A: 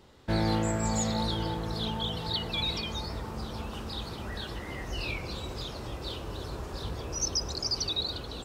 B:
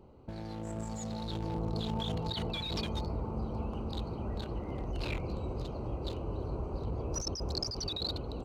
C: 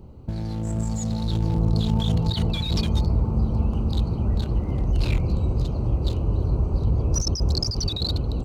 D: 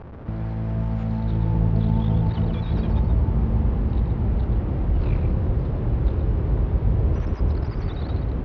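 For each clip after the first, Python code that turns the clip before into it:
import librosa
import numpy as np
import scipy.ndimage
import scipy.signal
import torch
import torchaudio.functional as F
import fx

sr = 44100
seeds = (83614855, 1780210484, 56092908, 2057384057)

y1 = fx.wiener(x, sr, points=25)
y1 = fx.over_compress(y1, sr, threshold_db=-35.0, ratio=-1.0)
y2 = fx.bass_treble(y1, sr, bass_db=12, treble_db=7)
y2 = y2 * librosa.db_to_amplitude(4.0)
y3 = fx.delta_mod(y2, sr, bps=32000, step_db=-32.5)
y3 = scipy.signal.sosfilt(scipy.signal.butter(2, 1400.0, 'lowpass', fs=sr, output='sos'), y3)
y3 = y3 + 10.0 ** (-6.5 / 20.0) * np.pad(y3, (int(126 * sr / 1000.0), 0))[:len(y3)]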